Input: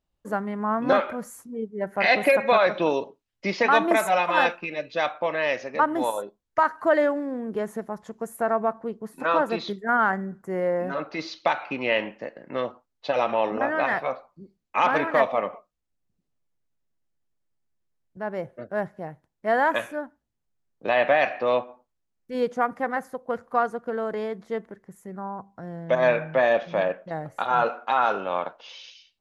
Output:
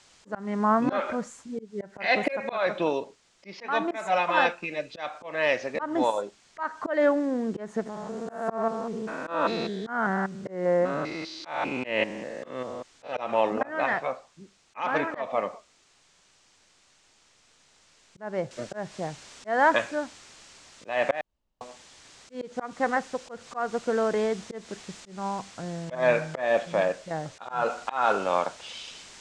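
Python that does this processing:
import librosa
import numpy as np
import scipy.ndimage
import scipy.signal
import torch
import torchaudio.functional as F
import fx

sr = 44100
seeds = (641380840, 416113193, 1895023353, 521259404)

y = fx.spec_steps(x, sr, hold_ms=200, at=(7.85, 13.11), fade=0.02)
y = fx.noise_floor_step(y, sr, seeds[0], at_s=18.51, before_db=-57, after_db=-47, tilt_db=0.0)
y = fx.edit(y, sr, fx.room_tone_fill(start_s=21.21, length_s=0.4), tone=tone)
y = scipy.signal.sosfilt(scipy.signal.butter(6, 7900.0, 'lowpass', fs=sr, output='sos'), y)
y = fx.auto_swell(y, sr, attack_ms=218.0)
y = fx.rider(y, sr, range_db=5, speed_s=2.0)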